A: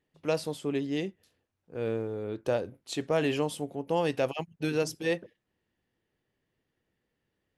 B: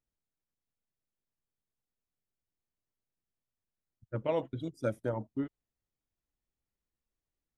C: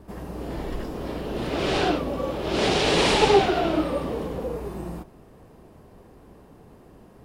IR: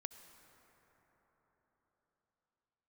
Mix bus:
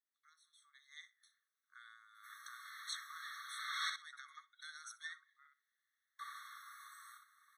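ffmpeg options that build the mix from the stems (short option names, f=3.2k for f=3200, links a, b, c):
-filter_complex "[0:a]highpass=340,acompressor=threshold=-38dB:ratio=6,volume=-4.5dB,afade=t=in:st=0.7:d=0.37:silence=0.237137,asplit=2[a][b];[b]volume=-19.5dB[c];[1:a]acompressor=threshold=-42dB:ratio=6,volume=-4.5dB,asplit=2[d][e];[e]volume=-4dB[f];[2:a]adelay=2150,volume=-9dB,asplit=3[g][h][i];[g]atrim=end=3.9,asetpts=PTS-STARTPTS,afade=t=out:st=3.896:d=0.004:c=hsin[j];[h]atrim=start=3.9:end=6.19,asetpts=PTS-STARTPTS,volume=0[k];[i]atrim=start=6.19,asetpts=PTS-STARTPTS,afade=t=in:d=0.004:c=hsin[l];[j][k][l]concat=n=3:v=0:a=1,asplit=2[m][n];[n]volume=-5.5dB[o];[c][f][o]amix=inputs=3:normalize=0,aecho=0:1:62|124|186:1|0.16|0.0256[p];[a][d][m][p]amix=inputs=4:normalize=0,dynaudnorm=f=210:g=5:m=4dB,afftfilt=real='re*eq(mod(floor(b*sr/1024/1100),2),1)':imag='im*eq(mod(floor(b*sr/1024/1100),2),1)':win_size=1024:overlap=0.75"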